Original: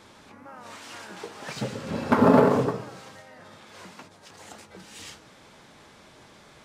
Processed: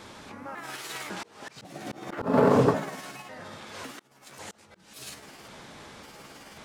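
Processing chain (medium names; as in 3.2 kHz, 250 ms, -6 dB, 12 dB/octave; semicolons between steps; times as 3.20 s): pitch shift switched off and on +5.5 st, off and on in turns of 548 ms; slow attack 489 ms; trim +5.5 dB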